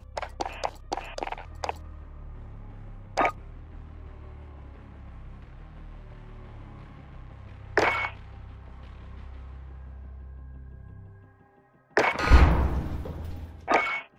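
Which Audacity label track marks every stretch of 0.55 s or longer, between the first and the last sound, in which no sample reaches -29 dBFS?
1.700000	3.170000	silence
3.300000	7.770000	silence
8.080000	11.970000	silence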